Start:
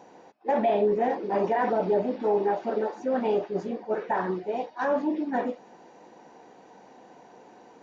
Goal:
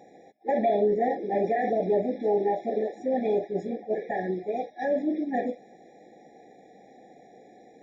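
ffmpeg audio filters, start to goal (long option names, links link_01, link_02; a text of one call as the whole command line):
ffmpeg -i in.wav -filter_complex "[0:a]asettb=1/sr,asplit=3[link_01][link_02][link_03];[link_01]atrim=end=0.684[link_04];[link_02]atrim=start=0.68:end=1.22,asetpts=PTS-STARTPTS,afade=type=in:duration=0.004:curve=qsin,afade=type=out:start_time=0.536:duration=0.004:curve=qsin,bandreject=frequency=2500:width=6[link_05];[link_03]atrim=start=1.216[link_06];[link_04][link_05]acrossfade=duration=0.004:curve1=hsin:curve2=qsin[link_07];[link_07][link_06]acrossfade=duration=0.004:curve1=qsin:curve2=hsin,afftfilt=real='re*eq(mod(floor(b*sr/1024/830),2),0)':imag='im*eq(mod(floor(b*sr/1024/830),2),0)':win_size=1024:overlap=0.75" out.wav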